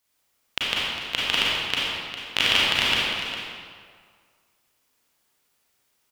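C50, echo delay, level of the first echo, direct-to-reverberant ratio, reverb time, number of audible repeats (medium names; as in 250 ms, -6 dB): -4.0 dB, 404 ms, -10.5 dB, -7.0 dB, 2.0 s, 1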